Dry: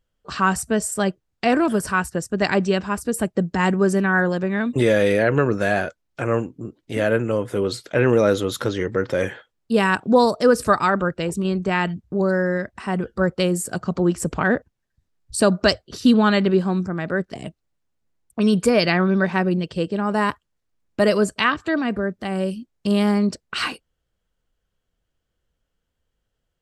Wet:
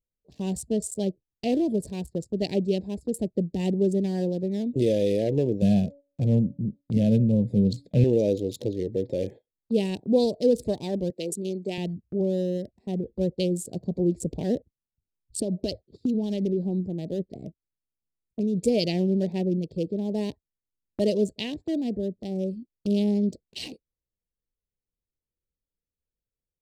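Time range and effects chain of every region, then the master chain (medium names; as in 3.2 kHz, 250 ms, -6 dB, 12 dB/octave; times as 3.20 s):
5.62–8.04 s: gate -53 dBFS, range -12 dB + resonant low shelf 260 Hz +8.5 dB, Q 3 + de-hum 283.4 Hz, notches 3
11.10–11.78 s: high-pass 260 Hz + treble shelf 5 kHz +11 dB
15.40–18.62 s: treble shelf 5.6 kHz -5.5 dB + compression 12:1, threshold -16 dBFS
whole clip: local Wiener filter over 15 samples; Chebyshev band-stop 490–3500 Hz, order 2; gate -37 dBFS, range -11 dB; trim -4 dB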